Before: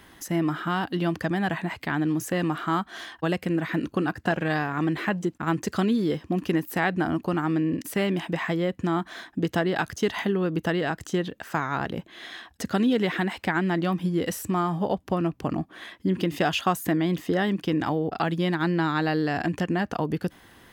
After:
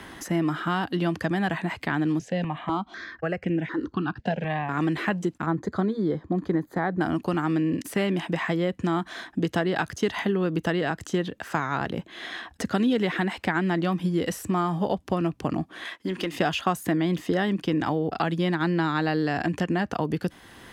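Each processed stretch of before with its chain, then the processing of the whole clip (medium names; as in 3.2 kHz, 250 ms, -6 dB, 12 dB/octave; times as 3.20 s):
2.19–4.69 s: distance through air 160 m + stepped phaser 4 Hz 320–4300 Hz
5.46–7.01 s: boxcar filter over 16 samples + band-stop 240 Hz, Q 7.1
15.85–16.36 s: high-pass 870 Hz 6 dB/octave + waveshaping leveller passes 1
whole clip: low-pass 12 kHz 12 dB/octave; three bands compressed up and down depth 40%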